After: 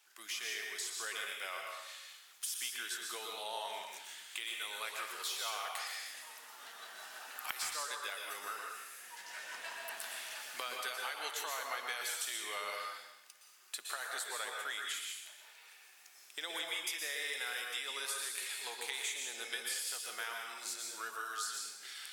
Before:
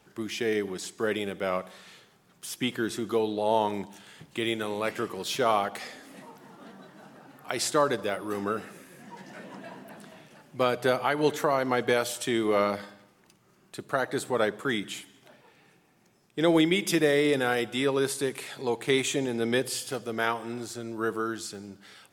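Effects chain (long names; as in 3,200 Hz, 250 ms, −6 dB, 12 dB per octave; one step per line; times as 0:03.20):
camcorder AGC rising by 7.6 dB per second
Bessel high-pass filter 1,500 Hz, order 2
spectral tilt +2 dB per octave
downward compressor, threshold −32 dBFS, peak gain reduction 13 dB
dense smooth reverb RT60 0.9 s, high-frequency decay 0.95×, pre-delay 105 ms, DRR 0.5 dB
level −5.5 dB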